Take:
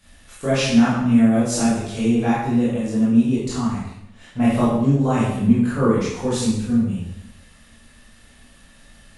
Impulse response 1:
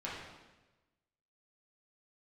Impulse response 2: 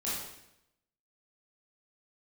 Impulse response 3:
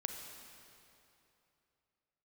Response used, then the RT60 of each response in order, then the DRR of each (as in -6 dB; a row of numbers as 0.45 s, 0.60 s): 2; 1.1 s, 0.80 s, 2.9 s; -7.5 dB, -9.0 dB, 4.0 dB